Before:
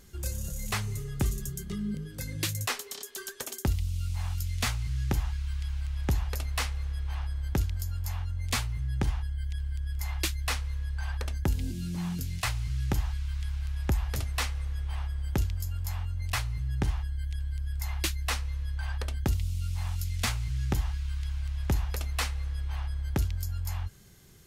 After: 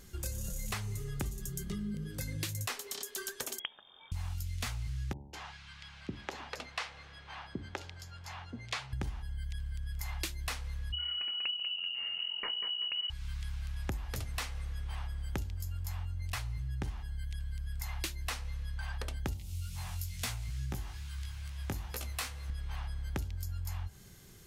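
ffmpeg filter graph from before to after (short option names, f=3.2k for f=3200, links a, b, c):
-filter_complex "[0:a]asettb=1/sr,asplit=3[a][b][c];[a]atrim=end=3.594[d];[b]atrim=start=3.59:end=4.12,asetpts=PTS-STARTPTS,afade=t=in:d=0.004:c=qsin,afade=t=out:st=0.526:d=0.004:c=qsin,acompressor=threshold=-32dB:ratio=6:attack=3.2:release=140:knee=1:detection=peak,highpass=f=480:t=q:w=5.3,lowpass=f=3.1k:t=q:w=0.5098,lowpass=f=3.1k:t=q:w=0.6013,lowpass=f=3.1k:t=q:w=0.9,lowpass=f=3.1k:t=q:w=2.563,afreqshift=-3700[e];[c]atrim=start=4.116[f];[d][e]acrossfade=d=0.004:c1=hsin:c2=qsin[g];[g][f]acrossfade=d=0.004:c1=qsin:c2=hsin,asettb=1/sr,asplit=3[h][i][j];[h]atrim=end=5.134[k];[i]atrim=start=5.13:end=8.93,asetpts=PTS-STARTPTS,afade=t=in:d=0.004:c=qsin,afade=t=out:st=3.796:d=0.004:c=qsin,highpass=230,lowpass=4.5k,acrossover=split=370[l][m];[m]adelay=200[n];[l][n]amix=inputs=2:normalize=0,atrim=end_sample=167580[o];[j]atrim=start=8.926[p];[k][o]acrossfade=d=0.004:c1=hsin:c2=qsin[q];[q][p]acrossfade=d=0.004:c1=qsin:c2=hsin,asettb=1/sr,asplit=3[r][s][t];[r]atrim=end=10.924[u];[s]atrim=start=10.92:end=13.1,asetpts=PTS-STARTPTS,afade=t=in:d=0.004:c=qsin,afade=t=out:st=2.176:d=0.004:c=qsin,equalizer=f=1.3k:w=0.31:g=-6,aecho=1:1:192|384|576|768|960:0.531|0.207|0.0807|0.0315|0.0123,atrim=end_sample=96138,lowpass=f=2.6k:t=q:w=0.5098,lowpass=f=2.6k:t=q:w=0.6013,lowpass=f=2.6k:t=q:w=0.9,lowpass=f=2.6k:t=q:w=2.563,afreqshift=-3000[v];[t]atrim=start=13.096[w];[u][v]acrossfade=d=0.004:c1=hsin:c2=qsin[x];[x][w]acrossfade=d=0.004:c1=qsin:c2=hsin,asettb=1/sr,asplit=3[y][z][aa];[y]atrim=end=19.374[ab];[z]atrim=start=19.37:end=22.5,asetpts=PTS-STARTPTS,afade=t=in:d=0.004:c=qsin,afade=t=out:st=3.126:d=0.004:c=qsin,highpass=61,highshelf=f=8.4k:g=7,flanger=delay=15.5:depth=5:speed=2.3[ac];[aa]atrim=start=22.496[ad];[ab][ac]acrossfade=d=0.004:c1=hsin:c2=qsin[ae];[ae][ad]acrossfade=d=0.004:c1=qsin:c2=hsin,bandreject=f=70.65:t=h:w=4,bandreject=f=141.3:t=h:w=4,bandreject=f=211.95:t=h:w=4,bandreject=f=282.6:t=h:w=4,bandreject=f=353.25:t=h:w=4,bandreject=f=423.9:t=h:w=4,bandreject=f=494.55:t=h:w=4,bandreject=f=565.2:t=h:w=4,bandreject=f=635.85:t=h:w=4,bandreject=f=706.5:t=h:w=4,bandreject=f=777.15:t=h:w=4,bandreject=f=847.8:t=h:w=4,bandreject=f=918.45:t=h:w=4,bandreject=f=989.1:t=h:w=4,acompressor=threshold=-35dB:ratio=6,volume=1dB"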